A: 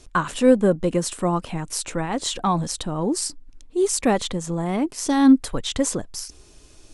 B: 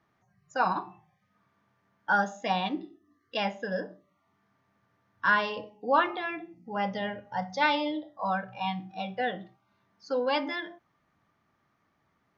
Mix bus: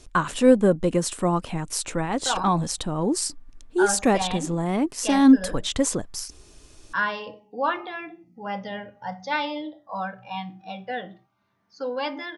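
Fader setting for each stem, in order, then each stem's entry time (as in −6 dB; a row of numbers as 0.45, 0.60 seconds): −0.5, −1.0 decibels; 0.00, 1.70 seconds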